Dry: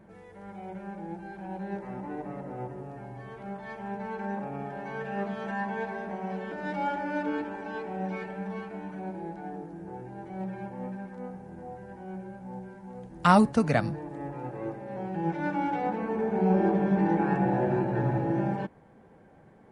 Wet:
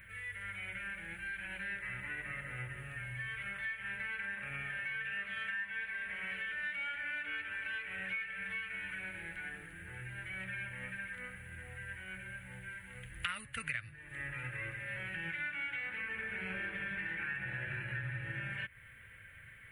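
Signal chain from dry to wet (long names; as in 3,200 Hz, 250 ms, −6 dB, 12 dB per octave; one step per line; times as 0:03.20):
drawn EQ curve 110 Hz 0 dB, 190 Hz −21 dB, 390 Hz −24 dB, 560 Hz −17 dB, 790 Hz −28 dB, 1,400 Hz +3 dB, 2,000 Hz +15 dB, 3,000 Hz +12 dB, 5,400 Hz −16 dB, 10,000 Hz +13 dB
downward compressor 6 to 1, threshold −42 dBFS, peak gain reduction 23 dB
level +4.5 dB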